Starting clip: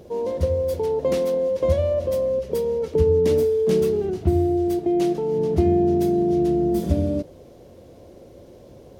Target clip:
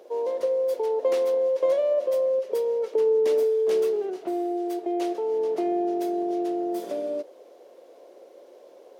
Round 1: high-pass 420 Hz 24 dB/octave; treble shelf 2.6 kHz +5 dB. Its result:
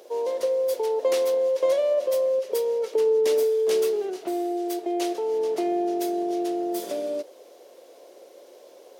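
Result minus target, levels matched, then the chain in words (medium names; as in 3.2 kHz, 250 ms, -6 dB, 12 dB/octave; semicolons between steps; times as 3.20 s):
4 kHz band +7.0 dB
high-pass 420 Hz 24 dB/octave; treble shelf 2.6 kHz -6 dB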